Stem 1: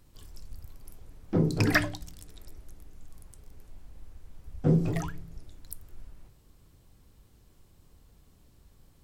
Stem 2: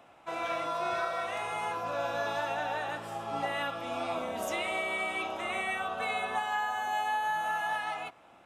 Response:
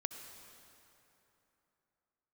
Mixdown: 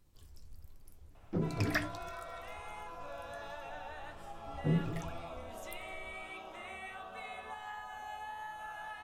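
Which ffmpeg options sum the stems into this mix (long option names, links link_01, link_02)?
-filter_complex "[0:a]volume=-5dB[link_01];[1:a]acompressor=threshold=-45dB:ratio=1.5,adelay=1150,volume=-3dB[link_02];[link_01][link_02]amix=inputs=2:normalize=0,equalizer=frequency=76:width=7.4:gain=9,flanger=delay=4.9:depth=9.1:regen=66:speed=1.4:shape=sinusoidal"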